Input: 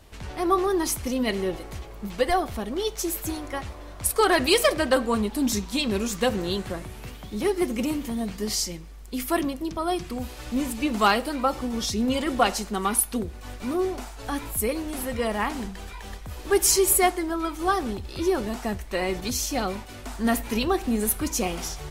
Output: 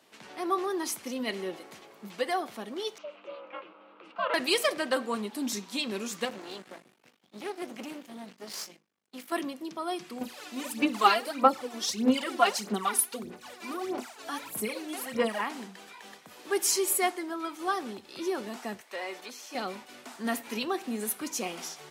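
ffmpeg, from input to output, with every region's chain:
-filter_complex "[0:a]asettb=1/sr,asplit=3[a][b][c];[a]atrim=end=2.984[d];[b]atrim=start=2.98:end=4.34,asetpts=PTS-STARTPTS,afade=t=in:d=0.004:c=qsin,afade=t=out:st=1.356:d=0.004:c=qsin,aeval=exprs='val(0)*sin(2*PI*250*n/s)':c=same,highpass=470,equalizer=f=510:t=q:w=4:g=8,equalizer=f=780:t=q:w=4:g=-6,equalizer=f=1.2k:t=q:w=4:g=6,equalizer=f=1.8k:t=q:w=4:g=-10,equalizer=f=2.8k:t=q:w=4:g=6,lowpass=f=2.8k:w=0.5412,lowpass=f=2.8k:w=1.3066[e];[c]atrim=start=4.336[f];[d][e]acrossfade=d=0.004:c1=hsin:c2=qsin[g];[g][f]acrossfade=d=0.004:c1=qsin:c2=hsin,asettb=1/sr,asplit=3[h][i][j];[h]atrim=end=6.254[k];[i]atrim=start=6.25:end=9.32,asetpts=PTS-STARTPTS,afade=t=in:d=0.004:c=qsin,afade=t=out:st=3.066:d=0.004:c=qsin,agate=range=-33dB:threshold=-31dB:ratio=3:release=100:detection=peak,highshelf=f=7.3k:g=-4.5,aeval=exprs='max(val(0),0)':c=same[l];[j]atrim=start=9.316[m];[k][l]acrossfade=d=0.004:c1=hsin:c2=qsin[n];[n][m]acrossfade=d=0.004:c1=qsin:c2=hsin,asettb=1/sr,asplit=3[o][p][q];[o]atrim=end=10.214[r];[p]atrim=start=10.21:end=15.41,asetpts=PTS-STARTPTS,afade=t=in:d=0.004:c=qsin,afade=t=out:st=5.196:d=0.004:c=qsin,bandreject=f=60:t=h:w=6,bandreject=f=120:t=h:w=6,bandreject=f=180:t=h:w=6,bandreject=f=240:t=h:w=6,bandreject=f=300:t=h:w=6,bandreject=f=360:t=h:w=6,bandreject=f=420:t=h:w=6,bandreject=f=480:t=h:w=6,bandreject=f=540:t=h:w=6,aphaser=in_gain=1:out_gain=1:delay=3:decay=0.72:speed=1.6:type=sinusoidal[s];[q]atrim=start=15.406[t];[r][s]acrossfade=d=0.004:c1=hsin:c2=qsin[u];[u][t]acrossfade=d=0.004:c1=qsin:c2=hsin,asettb=1/sr,asplit=3[v][w][x];[v]atrim=end=18.804[y];[w]atrim=start=18.8:end=19.55,asetpts=PTS-STARTPTS,afade=t=in:d=0.004:c=qsin,afade=t=out:st=0.746:d=0.004:c=qsin,highpass=470,acrossover=split=2600[z][aa];[aa]acompressor=threshold=-40dB:ratio=4:attack=1:release=60[ab];[z][ab]amix=inputs=2:normalize=0,asoftclip=type=hard:threshold=-23.5dB[ac];[x]atrim=start=19.546[ad];[y][ac]acrossfade=d=0.004:c1=hsin:c2=qsin[ae];[ae][ad]acrossfade=d=0.004:c1=qsin:c2=hsin,highpass=f=190:w=0.5412,highpass=f=190:w=1.3066,equalizer=f=2.7k:w=0.34:g=4,volume=-8.5dB"

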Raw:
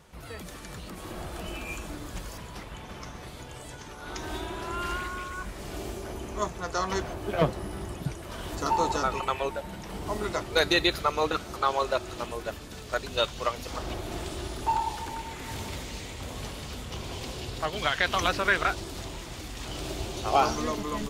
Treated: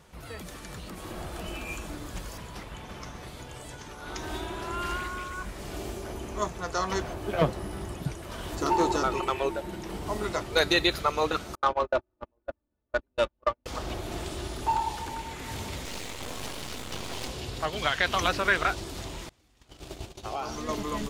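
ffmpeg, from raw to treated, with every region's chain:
-filter_complex "[0:a]asettb=1/sr,asplit=3[a][b][c];[a]atrim=end=8.614[d];[b]atrim=start=8.61:end=9.96,asetpts=PTS-STARTPTS,afade=t=in:d=0.004:c=qsin,afade=t=out:st=1.346:d=0.004:c=qsin,equalizer=f=350:t=o:w=0.27:g=13,asoftclip=type=hard:threshold=-17.5dB[e];[c]atrim=start=9.956[f];[d][e]acrossfade=d=0.004:c1=hsin:c2=qsin[g];[g][f]acrossfade=d=0.004:c1=qsin:c2=hsin,asettb=1/sr,asplit=3[h][i][j];[h]atrim=end=11.554[k];[i]atrim=start=11.55:end=13.66,asetpts=PTS-STARTPTS,afade=t=in:d=0.004:c=qsin,afade=t=out:st=2.106:d=0.004:c=qsin,aecho=1:1:3.4:0.53,atrim=end_sample=93051,agate=range=-39dB:threshold=-29dB:ratio=16:release=100:detection=peak,adynamicsmooth=sensitivity=1:basefreq=1.2k[l];[j]atrim=start=13.656[m];[k][l]acrossfade=d=0.004:c1=hsin:c2=qsin[n];[n][m]acrossfade=d=0.004:c1=qsin:c2=hsin,asettb=1/sr,asplit=3[o][p][q];[o]atrim=end=15.854[r];[p]atrim=start=15.85:end=17.28,asetpts=PTS-STARTPTS,afade=t=in:d=0.004:c=qsin,afade=t=out:st=1.426:d=0.004:c=qsin,lowshelf=f=110:g=-11.5,acontrast=72,aeval=exprs='max(val(0),0)':c=same[s];[q]atrim=start=17.276[t];[r][s]acrossfade=d=0.004:c1=hsin:c2=qsin[u];[u][t]acrossfade=d=0.004:c1=qsin:c2=hsin,asettb=1/sr,asplit=3[v][w][x];[v]atrim=end=19.294[y];[w]atrim=start=19.29:end=20.69,asetpts=PTS-STARTPTS,afade=t=in:d=0.004:c=qsin,afade=t=out:st=1.396:d=0.004:c=qsin,agate=range=-26dB:threshold=-34dB:ratio=16:release=100:detection=peak,acompressor=threshold=-33dB:ratio=3:attack=3.2:release=140:knee=1:detection=peak[z];[x]atrim=start=20.686[aa];[y][z]acrossfade=d=0.004:c1=hsin:c2=qsin[ab];[ab][aa]acrossfade=d=0.004:c1=qsin:c2=hsin"

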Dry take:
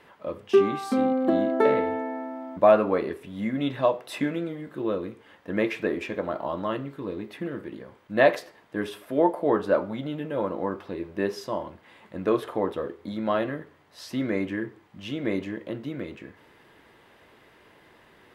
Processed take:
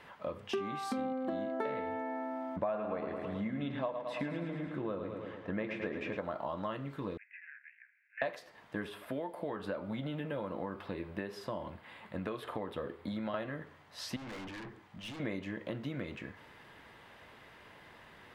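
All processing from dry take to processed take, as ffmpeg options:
-filter_complex "[0:a]asettb=1/sr,asplit=3[a][b][c];[a]atrim=end=2.564[d];[b]atrim=start=2.56:end=6.17,asetpts=PTS-STARTPTS,afade=t=in:d=0.004:c=qsin,afade=t=out:st=3.606:d=0.004:c=qsin,aemphasis=mode=reproduction:type=75fm,aecho=1:1:108|216|324|432|540|648|756:0.398|0.235|0.139|0.0818|0.0482|0.0285|0.0168,atrim=end_sample=159201[e];[c]atrim=start=6.166[f];[d][e]acrossfade=d=0.004:c1=hsin:c2=qsin[g];[g][f]acrossfade=d=0.004:c1=qsin:c2=hsin,asettb=1/sr,asplit=3[h][i][j];[h]atrim=end=7.174[k];[i]atrim=start=7.17:end=8.22,asetpts=PTS-STARTPTS,afade=t=in:d=0.004:c=qsin,afade=t=out:st=1.046:d=0.004:c=qsin,aeval=exprs='(tanh(28.2*val(0)+0.75)-tanh(0.75))/28.2':c=same,asuperpass=centerf=2000:order=12:qfactor=1.9[l];[j]atrim=start=8.216[m];[k][l]acrossfade=d=0.004:c1=hsin:c2=qsin[n];[n][m]acrossfade=d=0.004:c1=qsin:c2=hsin,asettb=1/sr,asplit=3[o][p][q];[o]atrim=end=8.854[r];[p]atrim=start=8.85:end=13.34,asetpts=PTS-STARTPTS,afade=t=in:d=0.004:c=qsin,afade=t=out:st=4.486:d=0.004:c=qsin,acrossover=split=550|1900[s][t][u];[s]acompressor=threshold=-30dB:ratio=4[v];[t]acompressor=threshold=-39dB:ratio=4[w];[u]acompressor=threshold=-46dB:ratio=4[x];[v][w][x]amix=inputs=3:normalize=0,equalizer=f=6.1k:t=o:w=0.46:g=-7.5[y];[q]atrim=start=13.336[z];[r][y]acrossfade=d=0.004:c1=hsin:c2=qsin[aa];[aa][z]acrossfade=d=0.004:c1=qsin:c2=hsin,asettb=1/sr,asplit=3[ab][ac][ad];[ab]atrim=end=14.164[ae];[ac]atrim=start=14.16:end=15.2,asetpts=PTS-STARTPTS,afade=t=in:d=0.004:c=qsin,afade=t=out:st=1.036:d=0.004:c=qsin,bandreject=f=50:t=h:w=6,bandreject=f=100:t=h:w=6,bandreject=f=150:t=h:w=6,bandreject=f=200:t=h:w=6,bandreject=f=250:t=h:w=6,bandreject=f=300:t=h:w=6,bandreject=f=350:t=h:w=6,bandreject=f=400:t=h:w=6,bandreject=f=450:t=h:w=6,aeval=exprs='(tanh(112*val(0)+0.15)-tanh(0.15))/112':c=same[af];[ad]atrim=start=15.196[ag];[ae][af]acrossfade=d=0.004:c1=hsin:c2=qsin[ah];[ah][ag]acrossfade=d=0.004:c1=qsin:c2=hsin,equalizer=f=360:w=1.4:g=-7,acompressor=threshold=-36dB:ratio=5,highshelf=f=7.7k:g=-6,volume=1.5dB"

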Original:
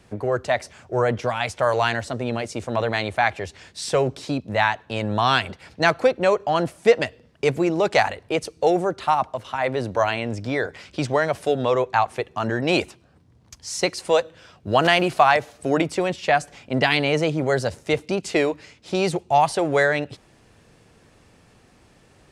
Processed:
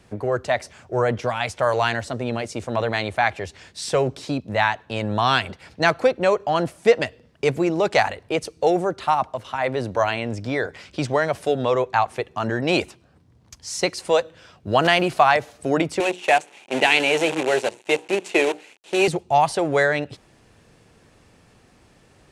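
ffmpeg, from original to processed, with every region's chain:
-filter_complex "[0:a]asettb=1/sr,asplit=3[a][b][c];[a]atrim=end=16.004[d];[b]atrim=start=16:end=19.08,asetpts=PTS-STARTPTS,afade=t=in:d=0.004:c=qsin,afade=t=out:st=3.076:d=0.004:c=qsin,bandreject=f=60:t=h:w=6,bandreject=f=120:t=h:w=6,bandreject=f=180:t=h:w=6,bandreject=f=240:t=h:w=6,bandreject=f=300:t=h:w=6,bandreject=f=360:t=h:w=6,bandreject=f=420:t=h:w=6,bandreject=f=480:t=h:w=6,acrusher=bits=5:dc=4:mix=0:aa=0.000001,highpass=290,equalizer=f=370:t=q:w=4:g=6,equalizer=f=850:t=q:w=4:g=5,equalizer=f=1.2k:t=q:w=4:g=-5,equalizer=f=2.6k:t=q:w=4:g=8,equalizer=f=5k:t=q:w=4:g=-8,lowpass=f=9.3k:w=0.5412,lowpass=f=9.3k:w=1.3066[e];[c]atrim=start=19.076[f];[d][e]acrossfade=d=0.004:c1=hsin:c2=qsin[g];[g][f]acrossfade=d=0.004:c1=qsin:c2=hsin"

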